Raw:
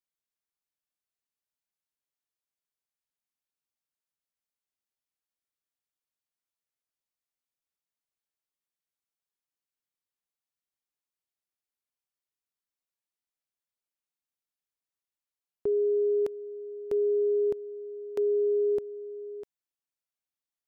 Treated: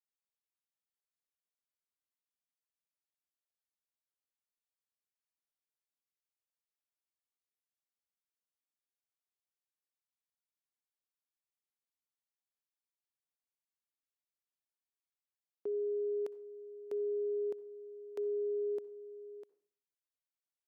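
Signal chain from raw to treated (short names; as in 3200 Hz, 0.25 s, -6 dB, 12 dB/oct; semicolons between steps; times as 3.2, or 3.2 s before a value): HPF 280 Hz 12 dB/oct; on a send: reverb RT60 0.50 s, pre-delay 58 ms, DRR 19.5 dB; on the sum: gain -9 dB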